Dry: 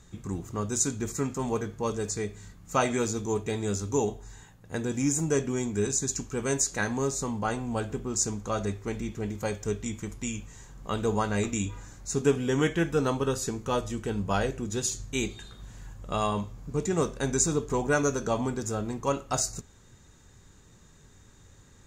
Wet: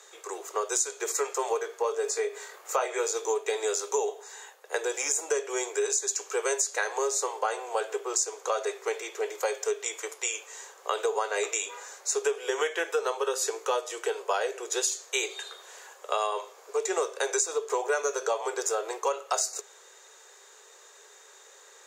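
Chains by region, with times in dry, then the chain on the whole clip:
1.82–3.07 bell 6100 Hz -6 dB 2.5 oct + upward compressor, threshold -33 dBFS + doubler 22 ms -8.5 dB
whole clip: steep high-pass 400 Hz 72 dB/oct; compressor 6:1, threshold -33 dBFS; gain +8.5 dB

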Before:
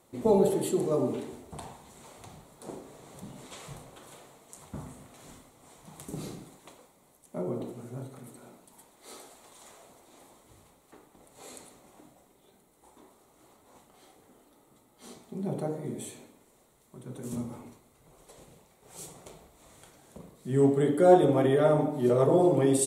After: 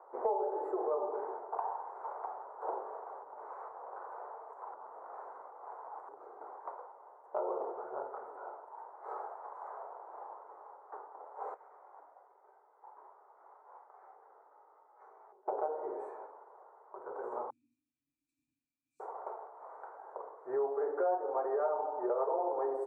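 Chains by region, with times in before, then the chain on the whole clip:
2.97–6.41 doubler 38 ms -13 dB + compressor 10:1, threshold -48 dBFS
11.54–15.48 compressor, threshold -50 dBFS + rippled Chebyshev low-pass 7900 Hz, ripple 9 dB
17.5–19 brick-wall FIR band-stop 300–2300 Hz + notches 50/100/150/200/250/300/350 Hz + doubler 21 ms -12.5 dB
whole clip: elliptic band-pass 420–1500 Hz, stop band 40 dB; bell 900 Hz +12 dB 0.84 oct; compressor 5:1, threshold -36 dBFS; gain +4 dB

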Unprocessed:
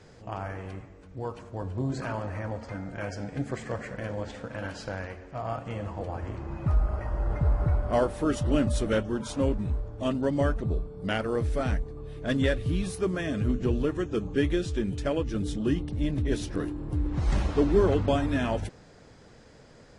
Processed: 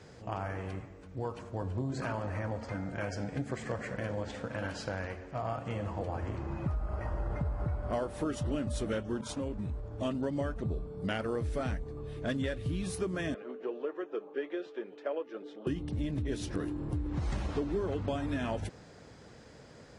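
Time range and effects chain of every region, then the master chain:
9.21–9.91 expander -35 dBFS + compressor 3:1, threshold -33 dBFS
13.34–15.67 HPF 420 Hz 24 dB/oct + tape spacing loss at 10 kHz 40 dB
whole clip: HPF 51 Hz; compressor, threshold -30 dBFS

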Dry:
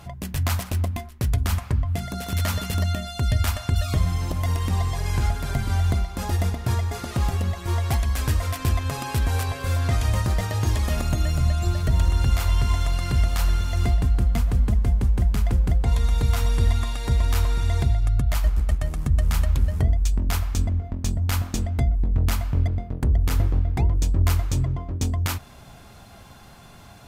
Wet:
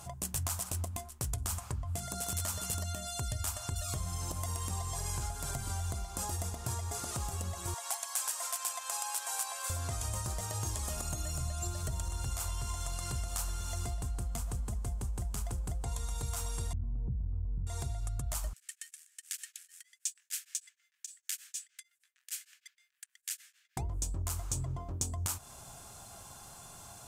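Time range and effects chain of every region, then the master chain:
7.74–9.7 HPF 690 Hz 24 dB/oct + notch 1200 Hz, Q 14
16.73–17.67 synth low-pass 180 Hz, resonance Q 2 + fast leveller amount 100%
18.53–23.77 Chebyshev high-pass 1700 Hz, order 5 + high shelf 6000 Hz -6 dB + beating tremolo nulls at 6.5 Hz
whole clip: tone controls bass -10 dB, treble 0 dB; compressor, threshold -33 dBFS; ten-band EQ 125 Hz +3 dB, 250 Hz -6 dB, 500 Hz -5 dB, 2000 Hz -10 dB, 4000 Hz -5 dB, 8000 Hz +11 dB

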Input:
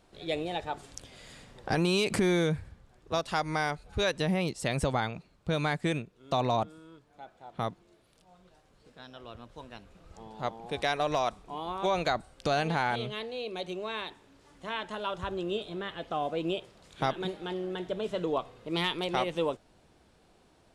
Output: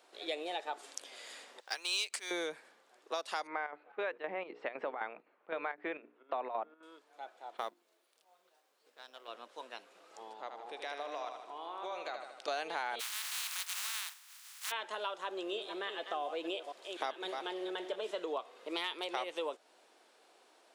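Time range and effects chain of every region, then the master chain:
1.6–2.31 weighting filter ITU-R 468 + companded quantiser 6-bit + upward expander 2.5:1, over -32 dBFS
3.47–6.83 LPF 2300 Hz 24 dB/oct + notches 60/120/180/240/300/360/420/480 Hz + chopper 3.9 Hz, depth 65%, duty 75%
7.57–9.28 G.711 law mismatch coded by A + notches 50/100/150/200/250/300/350 Hz
10.33–12.48 high shelf 6100 Hz -9 dB + compressor 2:1, threshold -47 dBFS + feedback echo 77 ms, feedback 57%, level -7 dB
12.99–14.7 spectral contrast lowered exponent 0.18 + HPF 1000 Hz 24 dB/oct + mismatched tape noise reduction encoder only
15.24–18.11 reverse delay 0.247 s, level -10 dB + notch 1400 Hz, Q 24
whole clip: Bessel high-pass 520 Hz, order 6; compressor 3:1, threshold -38 dBFS; gain +2 dB

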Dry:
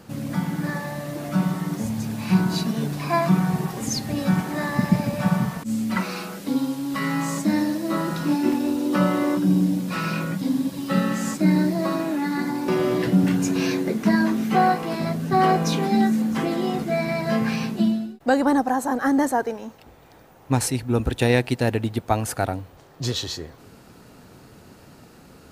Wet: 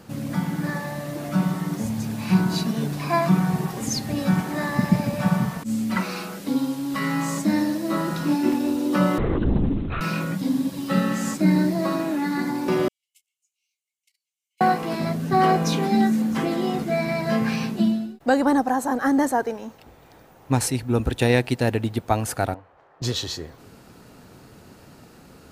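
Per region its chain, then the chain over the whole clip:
9.18–10.01 hard clip -16.5 dBFS + LPC vocoder at 8 kHz whisper + mismatched tape noise reduction decoder only
12.88–14.61 gate -13 dBFS, range -47 dB + rippled Chebyshev high-pass 2100 Hz, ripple 9 dB + high shelf 3100 Hz +10 dB
22.54–23.02 LPF 6600 Hz + three-band isolator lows -16 dB, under 510 Hz, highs -20 dB, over 2100 Hz
whole clip: dry

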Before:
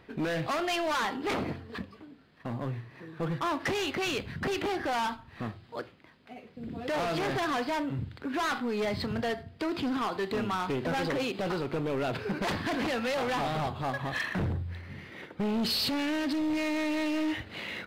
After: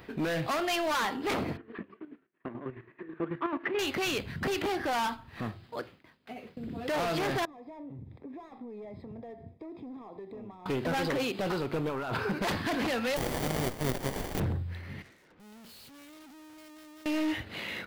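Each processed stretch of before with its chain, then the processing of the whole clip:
1.57–3.79 speaker cabinet 230–2500 Hz, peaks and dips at 360 Hz +10 dB, 520 Hz -5 dB, 790 Hz -6 dB + chopper 9.2 Hz, depth 60%, duty 40%
7.45–10.66 low shelf 210 Hz -7 dB + compressor 5:1, threshold -45 dBFS + running mean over 30 samples
11.89–12.3 band shelf 1100 Hz +8.5 dB 1.1 oct + negative-ratio compressor -33 dBFS
13.16–14.38 spectral contrast lowered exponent 0.13 + brick-wall FIR low-pass 13000 Hz + running maximum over 33 samples
15.02–17.06 LPF 2500 Hz + tube stage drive 56 dB, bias 0.6
whole clip: expander -48 dBFS; high shelf 12000 Hz +10.5 dB; upward compressor, threshold -37 dBFS

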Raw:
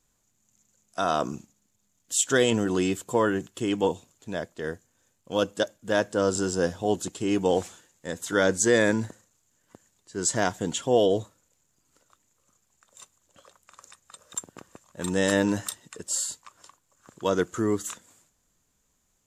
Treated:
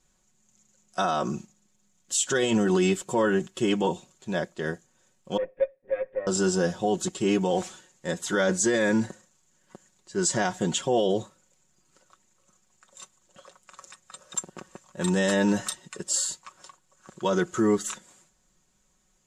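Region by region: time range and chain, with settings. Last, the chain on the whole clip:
5.37–6.27 minimum comb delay 7.3 ms + vocal tract filter e
whole clip: LPF 8800 Hz 12 dB/oct; comb 5.4 ms, depth 67%; limiter -16 dBFS; gain +2 dB

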